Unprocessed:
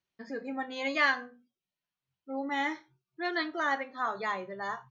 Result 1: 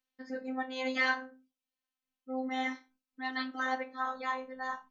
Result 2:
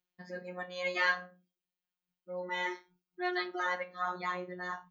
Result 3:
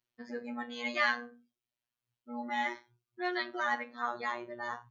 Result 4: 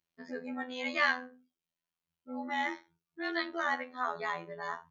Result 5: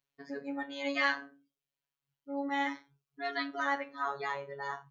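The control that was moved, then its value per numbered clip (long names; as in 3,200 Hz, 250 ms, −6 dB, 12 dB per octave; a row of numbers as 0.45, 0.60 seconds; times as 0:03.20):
phases set to zero, frequency: 260, 180, 120, 84, 140 Hertz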